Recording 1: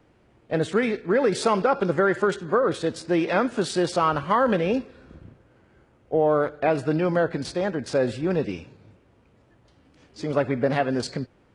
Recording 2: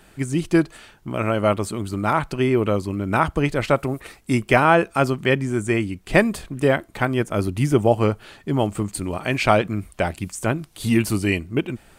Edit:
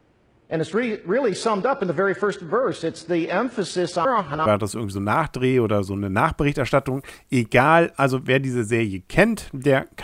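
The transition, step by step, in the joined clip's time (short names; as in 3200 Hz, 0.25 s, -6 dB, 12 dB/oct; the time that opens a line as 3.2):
recording 1
4.05–4.46 reverse
4.46 switch to recording 2 from 1.43 s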